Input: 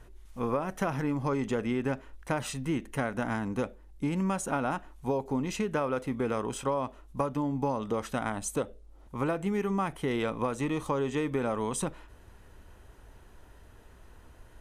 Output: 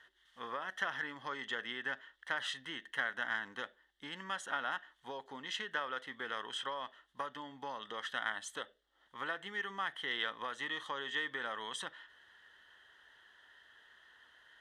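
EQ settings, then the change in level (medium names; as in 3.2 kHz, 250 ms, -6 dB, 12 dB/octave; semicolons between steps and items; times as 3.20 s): two resonant band-passes 2.4 kHz, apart 0.82 oct; +9.0 dB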